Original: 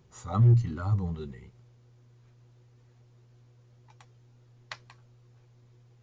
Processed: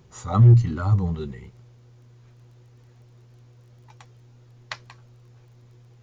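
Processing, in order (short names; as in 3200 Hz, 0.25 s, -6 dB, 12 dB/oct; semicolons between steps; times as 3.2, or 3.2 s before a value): crackle 15/s -59 dBFS; gain +7 dB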